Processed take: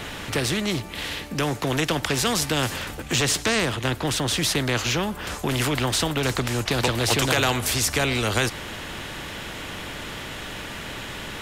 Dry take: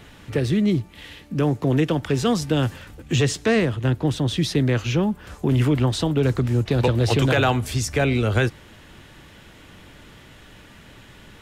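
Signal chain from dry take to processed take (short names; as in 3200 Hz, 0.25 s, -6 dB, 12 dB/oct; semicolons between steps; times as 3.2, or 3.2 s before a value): spectral compressor 2:1; gain +3.5 dB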